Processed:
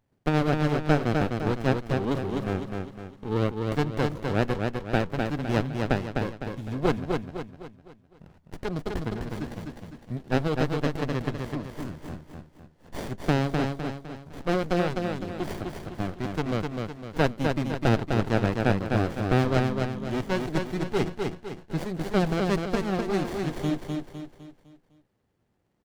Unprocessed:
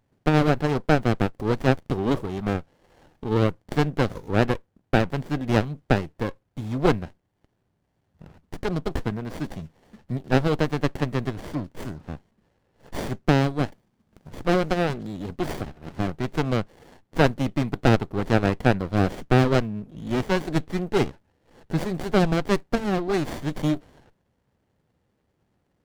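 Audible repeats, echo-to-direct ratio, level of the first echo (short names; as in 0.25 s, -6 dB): 5, -3.0 dB, -4.0 dB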